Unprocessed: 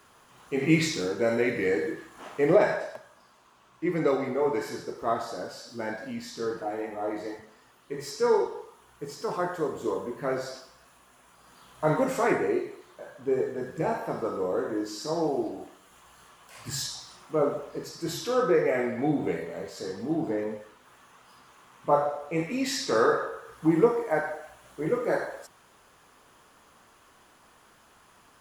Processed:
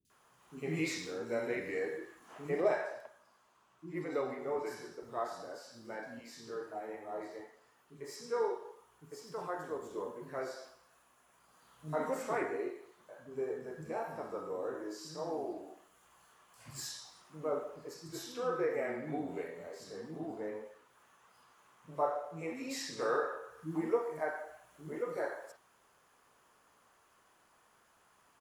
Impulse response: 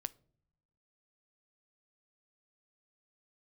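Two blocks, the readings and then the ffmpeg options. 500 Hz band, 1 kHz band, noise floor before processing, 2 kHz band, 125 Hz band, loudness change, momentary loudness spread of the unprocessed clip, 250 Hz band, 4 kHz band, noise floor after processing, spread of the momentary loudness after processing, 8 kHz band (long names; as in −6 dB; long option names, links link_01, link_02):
−10.0 dB, −9.5 dB, −59 dBFS, −9.5 dB, −13.0 dB, −10.5 dB, 16 LU, −12.5 dB, −11.0 dB, −69 dBFS, 16 LU, −9.5 dB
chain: -filter_complex "[0:a]lowshelf=frequency=120:gain=-7.5,acrossover=split=260|3600[link_01][link_02][link_03];[link_03]adelay=50[link_04];[link_02]adelay=100[link_05];[link_01][link_05][link_04]amix=inputs=3:normalize=0,volume=-9dB"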